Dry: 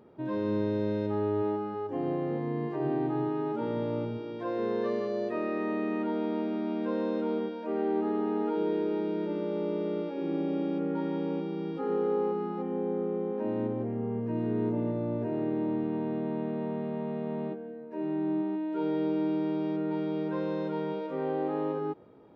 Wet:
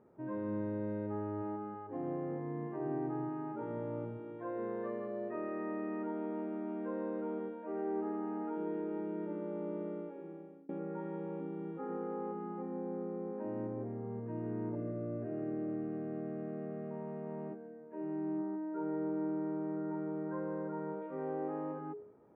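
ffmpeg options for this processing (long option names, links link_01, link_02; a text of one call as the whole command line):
ffmpeg -i in.wav -filter_complex "[0:a]asettb=1/sr,asplit=3[link_01][link_02][link_03];[link_01]atrim=end=14.754[link_04];[link_02]atrim=start=14.75:end=16.91,asetpts=PTS-STARTPTS,afade=type=in:duration=0.004:curve=qsin,afade=type=out:start_time=2.156:duration=0.004:curve=qsin,asuperstop=centerf=900:order=8:qfactor=6[link_05];[link_03]atrim=start=16.906[link_06];[link_04][link_05]acrossfade=duration=0.004:curve1=hsin:curve2=qsin[link_07];[link_07][link_06]acrossfade=duration=0.004:curve1=qsin:curve2=hsin,asettb=1/sr,asplit=3[link_08][link_09][link_10];[link_08]atrim=end=18.384[link_11];[link_09]atrim=start=18.38:end=21.02,asetpts=PTS-STARTPTS,afade=type=in:duration=0.004:curve=qsin,afade=type=out:start_time=2.636:duration=0.004:curve=qsin,highshelf=frequency=2100:width_type=q:width=1.5:gain=-9[link_12];[link_10]atrim=start=21.016[link_13];[link_11][link_12]acrossfade=duration=0.004:curve1=hsin:curve2=qsin[link_14];[link_14][link_13]acrossfade=duration=0.004:curve1=qsin:curve2=hsin,asplit=2[link_15][link_16];[link_15]atrim=end=10.69,asetpts=PTS-STARTPTS,afade=type=out:start_time=9.82:duration=0.87[link_17];[link_16]atrim=start=10.69,asetpts=PTS-STARTPTS,afade=type=in:duration=0.004:curve=hsin[link_18];[link_17][link_18]concat=n=2:v=0:a=1,lowpass=frequency=2000:width=0.5412,lowpass=frequency=2000:width=1.3066,bandreject=frequency=46.27:width_type=h:width=4,bandreject=frequency=92.54:width_type=h:width=4,bandreject=frequency=138.81:width_type=h:width=4,bandreject=frequency=185.08:width_type=h:width=4,bandreject=frequency=231.35:width_type=h:width=4,bandreject=frequency=277.62:width_type=h:width=4,bandreject=frequency=323.89:width_type=h:width=4,bandreject=frequency=370.16:width_type=h:width=4,bandreject=frequency=416.43:width_type=h:width=4,bandreject=frequency=462.7:width_type=h:width=4,volume=-7dB" out.wav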